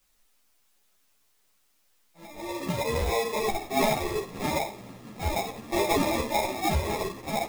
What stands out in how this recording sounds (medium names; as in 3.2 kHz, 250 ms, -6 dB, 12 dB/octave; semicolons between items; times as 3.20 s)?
aliases and images of a low sample rate 1.5 kHz, jitter 0%; tremolo saw down 0.54 Hz, depth 35%; a quantiser's noise floor 12-bit, dither triangular; a shimmering, thickened sound